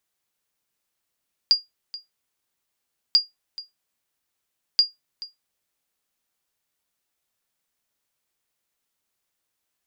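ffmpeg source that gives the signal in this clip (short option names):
-f lavfi -i "aevalsrc='0.398*(sin(2*PI*4820*mod(t,1.64))*exp(-6.91*mod(t,1.64)/0.17)+0.119*sin(2*PI*4820*max(mod(t,1.64)-0.43,0))*exp(-6.91*max(mod(t,1.64)-0.43,0)/0.17))':d=4.92:s=44100"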